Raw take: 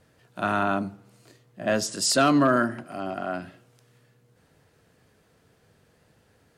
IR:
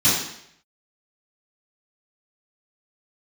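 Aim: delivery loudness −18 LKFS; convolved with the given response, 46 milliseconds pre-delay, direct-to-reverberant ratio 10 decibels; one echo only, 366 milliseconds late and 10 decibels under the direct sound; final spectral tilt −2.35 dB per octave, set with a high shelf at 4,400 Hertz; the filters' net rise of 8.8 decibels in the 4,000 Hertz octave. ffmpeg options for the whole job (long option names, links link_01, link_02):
-filter_complex "[0:a]equalizer=frequency=4000:width_type=o:gain=5.5,highshelf=frequency=4400:gain=9,aecho=1:1:366:0.316,asplit=2[link_01][link_02];[1:a]atrim=start_sample=2205,adelay=46[link_03];[link_02][link_03]afir=irnorm=-1:irlink=0,volume=-27.5dB[link_04];[link_01][link_04]amix=inputs=2:normalize=0,volume=2.5dB"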